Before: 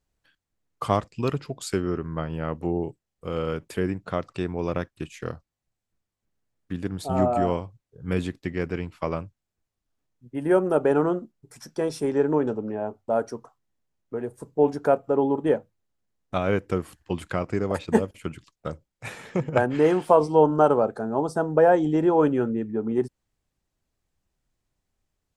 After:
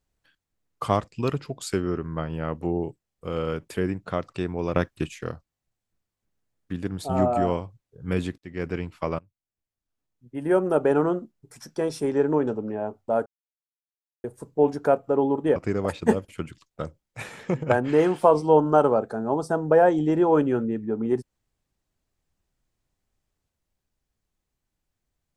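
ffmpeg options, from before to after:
ffmpeg -i in.wav -filter_complex "[0:a]asplit=8[link_01][link_02][link_03][link_04][link_05][link_06][link_07][link_08];[link_01]atrim=end=4.762[link_09];[link_02]atrim=start=4.758:end=5.142,asetpts=PTS-STARTPTS,volume=5.5dB[link_10];[link_03]atrim=start=5.138:end=8.38,asetpts=PTS-STARTPTS,afade=type=out:start_time=3.238:duration=0.004:curve=hsin[link_11];[link_04]atrim=start=8.38:end=9.19,asetpts=PTS-STARTPTS,afade=type=in:duration=0.3,afade=type=out:start_time=0.806:duration=0.004:curve=hsin:silence=0.0794328[link_12];[link_05]atrim=start=9.19:end=13.26,asetpts=PTS-STARTPTS,afade=type=in:duration=1.54:silence=0.0794328,afade=type=out:start_time=4.066:duration=0.004:curve=hsin[link_13];[link_06]atrim=start=13.26:end=14.24,asetpts=PTS-STARTPTS,volume=0[link_14];[link_07]atrim=start=14.24:end=15.562,asetpts=PTS-STARTPTS,afade=type=in:duration=0.004:curve=hsin[link_15];[link_08]atrim=start=17.418[link_16];[link_09][link_10]acrossfade=duration=0.004:curve1=hsin:curve2=hsin[link_17];[link_11][link_12][link_13][link_14][link_15]concat=n=5:v=0:a=1[link_18];[link_17][link_18]acrossfade=duration=0.004:curve1=hsin:curve2=hsin[link_19];[link_19][link_16]acrossfade=duration=0.004:curve1=hsin:curve2=hsin" out.wav

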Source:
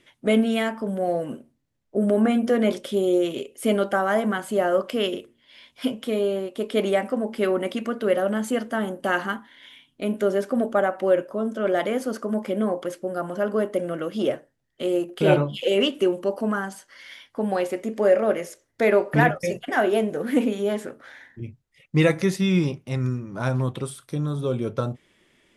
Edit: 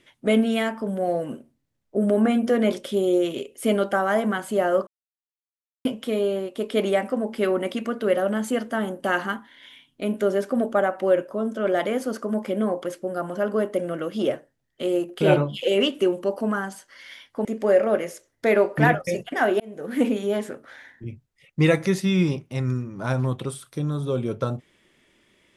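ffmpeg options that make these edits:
ffmpeg -i in.wav -filter_complex "[0:a]asplit=5[link_01][link_02][link_03][link_04][link_05];[link_01]atrim=end=4.87,asetpts=PTS-STARTPTS,afade=type=out:start_time=4.866:duration=0.004:curve=hsin[link_06];[link_02]atrim=start=4.87:end=5.85,asetpts=PTS-STARTPTS,volume=0[link_07];[link_03]atrim=start=5.85:end=17.452,asetpts=PTS-STARTPTS,afade=type=in:duration=0.004:curve=hsin[link_08];[link_04]atrim=start=17.808:end=19.96,asetpts=PTS-STARTPTS,afade=type=out:start_time=2.148:duration=0.004:curve=hsin[link_09];[link_05]atrim=start=19.96,asetpts=PTS-STARTPTS,afade=type=in:duration=0.44[link_10];[link_06][link_07][link_08]concat=n=3:v=0:a=1[link_11];[link_09][link_10]concat=n=2:v=0:a=1[link_12];[link_11][link_12]acrossfade=duration=0.004:curve1=hsin:curve2=hsin" out.wav

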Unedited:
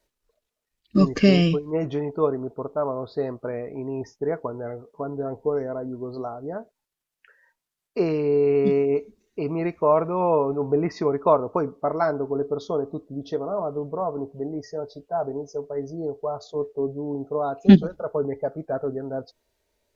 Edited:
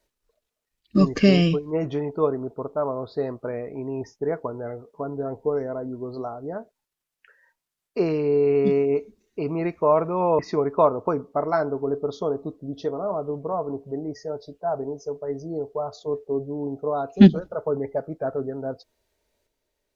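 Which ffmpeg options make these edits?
ffmpeg -i in.wav -filter_complex "[0:a]asplit=2[link_01][link_02];[link_01]atrim=end=10.392[link_03];[link_02]atrim=start=10.868[link_04];[link_03][link_04]acrossfade=duration=0.004:curve1=hsin:curve2=hsin" out.wav

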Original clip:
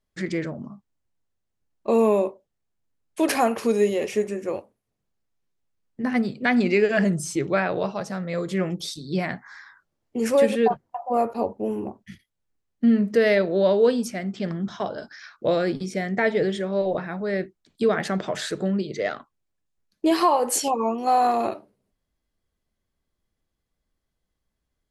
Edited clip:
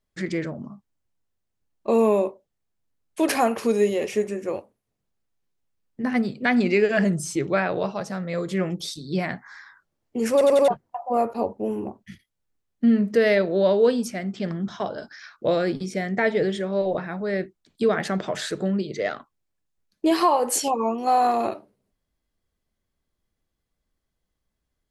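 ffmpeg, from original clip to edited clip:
ffmpeg -i in.wav -filter_complex "[0:a]asplit=5[link_01][link_02][link_03][link_04][link_05];[link_01]atrim=end=10.412[link_06];[link_02]atrim=start=10.318:end=10.412[link_07];[link_03]atrim=start=10.318:end=10.412[link_08];[link_04]atrim=start=10.318:end=10.412[link_09];[link_05]atrim=start=10.678[link_10];[link_06][link_07]acrossfade=duration=0.004:curve1=hsin:curve2=hsin[link_11];[link_11][link_08]acrossfade=duration=0.004:curve1=hsin:curve2=hsin[link_12];[link_12][link_09]acrossfade=duration=0.004:curve1=hsin:curve2=hsin[link_13];[link_13][link_10]acrossfade=duration=0.004:curve1=hsin:curve2=hsin" out.wav

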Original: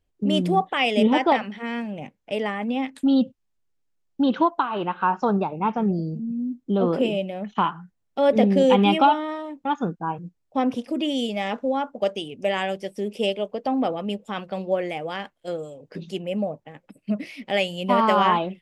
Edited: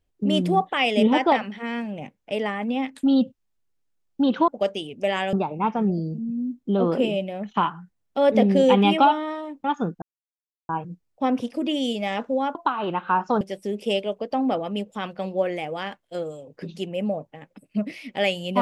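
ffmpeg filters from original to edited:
ffmpeg -i in.wav -filter_complex "[0:a]asplit=6[link_01][link_02][link_03][link_04][link_05][link_06];[link_01]atrim=end=4.482[link_07];[link_02]atrim=start=11.888:end=12.742[link_08];[link_03]atrim=start=5.338:end=10.03,asetpts=PTS-STARTPTS,afade=type=out:start_time=4.688:duration=0.004:curve=hsin,apad=pad_dur=0.67[link_09];[link_04]atrim=start=10.03:end=11.892,asetpts=PTS-STARTPTS,afade=type=in:duration=0.004:curve=hsin[link_10];[link_05]atrim=start=4.478:end=5.342[link_11];[link_06]atrim=start=12.738[link_12];[link_07][link_08]acrossfade=duration=0.004:curve1=hsin:curve2=hsin[link_13];[link_09][link_10]concat=n=2:v=0:a=1[link_14];[link_13][link_14]acrossfade=duration=0.004:curve1=hsin:curve2=hsin[link_15];[link_15][link_11]acrossfade=duration=0.004:curve1=hsin:curve2=hsin[link_16];[link_16][link_12]acrossfade=duration=0.004:curve1=hsin:curve2=hsin" out.wav

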